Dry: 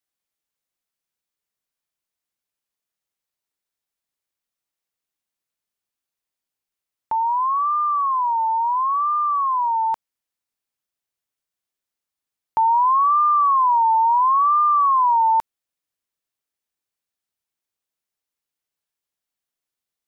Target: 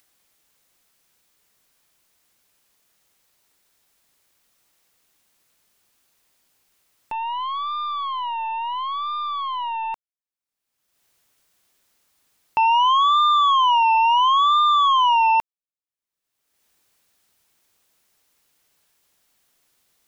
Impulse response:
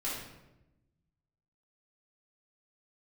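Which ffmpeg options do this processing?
-af "aeval=exprs='0.224*(cos(1*acos(clip(val(0)/0.224,-1,1)))-cos(1*PI/2))+0.0631*(cos(3*acos(clip(val(0)/0.224,-1,1)))-cos(3*PI/2))+0.00316*(cos(6*acos(clip(val(0)/0.224,-1,1)))-cos(6*PI/2))':c=same,acompressor=mode=upward:threshold=-38dB:ratio=2.5"

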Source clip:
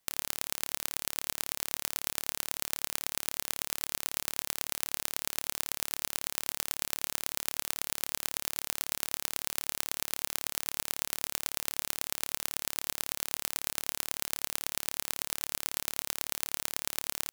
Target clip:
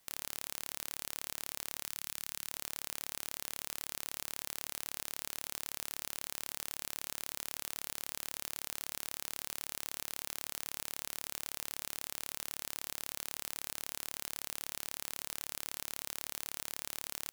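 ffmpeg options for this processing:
-filter_complex "[0:a]asoftclip=type=tanh:threshold=-18.5dB,asettb=1/sr,asplit=3[a][b][c];[a]atrim=end=1.854[d];[b]atrim=start=1.85:end=2.51,asetpts=PTS-STARTPTS,afade=t=in:d=0.004:c=qsin,afade=t=out:st=0.656:d=0.004:c=qsin,equalizer=f=490:w=0.87:g=-10[e];[c]atrim=start=2.506[f];[d][e]acrossfade=d=0.004:c1=hsin:c2=qsin[g];[g][f]acrossfade=d=0.004:c1=qsin:c2=hsin,volume=6.5dB"

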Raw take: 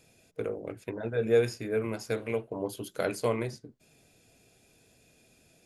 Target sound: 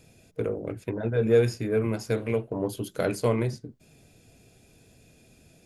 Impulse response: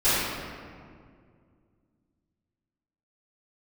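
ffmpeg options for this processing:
-filter_complex "[0:a]lowshelf=f=270:g=9,asplit=2[a][b];[b]asoftclip=type=tanh:threshold=-27dB,volume=-10dB[c];[a][c]amix=inputs=2:normalize=0"

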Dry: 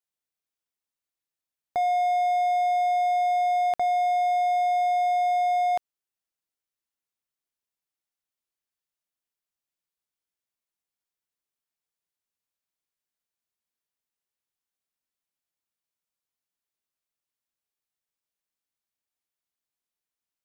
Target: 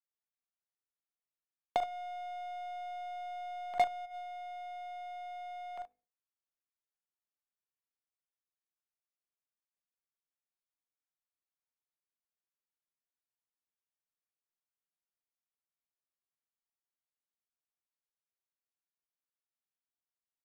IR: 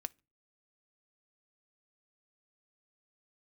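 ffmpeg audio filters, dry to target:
-filter_complex "[0:a]equalizer=f=1.4k:t=o:w=2.5:g=6.5,bandreject=f=50:t=h:w=6,bandreject=f=100:t=h:w=6,bandreject=f=150:t=h:w=6,bandreject=f=200:t=h:w=6,bandreject=f=250:t=h:w=6,bandreject=f=300:t=h:w=6,bandreject=f=350:t=h:w=6,bandreject=f=400:t=h:w=6,bandreject=f=450:t=h:w=6,bandreject=f=500:t=h:w=6[a];[1:a]atrim=start_sample=2205[b];[a][b]afir=irnorm=-1:irlink=0,asplit=3[c][d][e];[c]afade=t=out:st=1.81:d=0.02[f];[d]acontrast=51,afade=t=in:st=1.81:d=0.02,afade=t=out:st=4.05:d=0.02[g];[e]afade=t=in:st=4.05:d=0.02[h];[f][g][h]amix=inputs=3:normalize=0,highshelf=f=2.1k:g=-9.5,acrossover=split=260|1500[i][j][k];[i]acompressor=threshold=-59dB:ratio=4[l];[j]acompressor=threshold=-30dB:ratio=4[m];[k]acompressor=threshold=-43dB:ratio=4[n];[l][m][n]amix=inputs=3:normalize=0,aecho=1:1:44|76:0.355|0.316,aeval=exprs='0.0841*(cos(1*acos(clip(val(0)/0.0841,-1,1)))-cos(1*PI/2))+0.0211*(cos(3*acos(clip(val(0)/0.0841,-1,1)))-cos(3*PI/2))+0.00335*(cos(6*acos(clip(val(0)/0.0841,-1,1)))-cos(6*PI/2))+0.0015*(cos(8*acos(clip(val(0)/0.0841,-1,1)))-cos(8*PI/2))':c=same,volume=1.5dB"

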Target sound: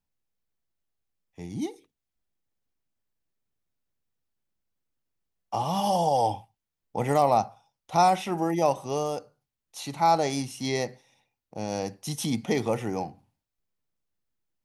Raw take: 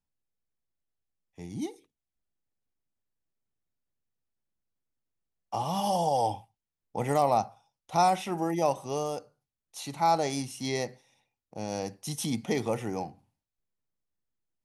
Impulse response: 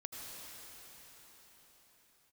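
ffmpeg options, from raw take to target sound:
-af "equalizer=f=9.1k:w=1.1:g=-3,volume=3dB"

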